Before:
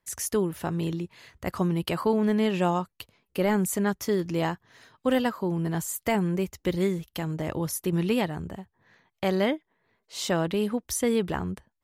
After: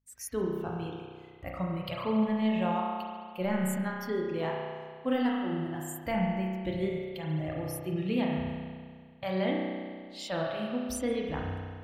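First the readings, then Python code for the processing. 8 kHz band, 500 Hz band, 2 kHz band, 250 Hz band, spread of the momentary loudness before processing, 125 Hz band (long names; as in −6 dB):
−10.5 dB, −5.5 dB, −4.5 dB, −4.0 dB, 11 LU, −5.0 dB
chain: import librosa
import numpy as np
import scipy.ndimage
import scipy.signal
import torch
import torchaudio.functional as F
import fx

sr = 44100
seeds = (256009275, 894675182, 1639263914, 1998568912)

p1 = fx.low_shelf(x, sr, hz=160.0, db=7.5)
p2 = p1 + fx.echo_single(p1, sr, ms=136, db=-17.5, dry=0)
p3 = fx.add_hum(p2, sr, base_hz=50, snr_db=32)
p4 = fx.noise_reduce_blind(p3, sr, reduce_db=16)
p5 = fx.rev_spring(p4, sr, rt60_s=1.9, pass_ms=(32,), chirp_ms=40, drr_db=-1.5)
y = F.gain(torch.from_numpy(p5), -8.0).numpy()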